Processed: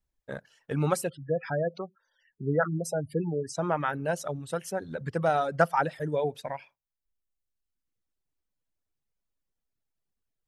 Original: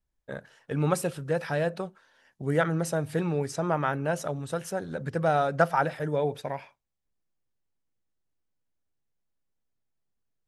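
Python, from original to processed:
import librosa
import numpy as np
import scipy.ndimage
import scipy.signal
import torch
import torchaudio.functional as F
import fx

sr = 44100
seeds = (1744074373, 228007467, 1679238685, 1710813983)

y = fx.dereverb_blind(x, sr, rt60_s=1.2)
y = fx.spec_gate(y, sr, threshold_db=-15, keep='strong', at=(1.08, 3.56), fade=0.02)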